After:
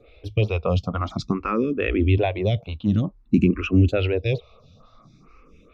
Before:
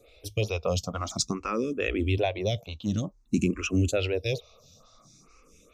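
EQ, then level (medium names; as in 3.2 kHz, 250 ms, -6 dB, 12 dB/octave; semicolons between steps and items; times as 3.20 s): distance through air 380 m; peaking EQ 580 Hz -4.5 dB 0.91 oct; +8.5 dB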